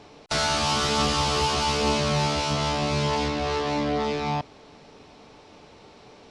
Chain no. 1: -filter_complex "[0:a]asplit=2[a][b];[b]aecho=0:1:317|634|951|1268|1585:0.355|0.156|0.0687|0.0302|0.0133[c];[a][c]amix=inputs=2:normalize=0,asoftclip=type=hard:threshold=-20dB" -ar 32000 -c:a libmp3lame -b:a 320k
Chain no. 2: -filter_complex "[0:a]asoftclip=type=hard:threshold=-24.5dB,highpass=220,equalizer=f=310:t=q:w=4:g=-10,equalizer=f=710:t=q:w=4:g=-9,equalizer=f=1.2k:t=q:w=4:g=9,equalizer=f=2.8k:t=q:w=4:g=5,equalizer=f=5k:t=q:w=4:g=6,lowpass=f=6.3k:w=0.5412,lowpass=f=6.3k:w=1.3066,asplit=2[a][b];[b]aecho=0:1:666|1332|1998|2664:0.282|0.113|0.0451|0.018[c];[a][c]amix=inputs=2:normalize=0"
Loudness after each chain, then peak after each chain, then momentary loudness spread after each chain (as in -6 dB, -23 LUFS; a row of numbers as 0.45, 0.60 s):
-24.5, -25.0 LUFS; -19.0, -13.5 dBFS; 12, 17 LU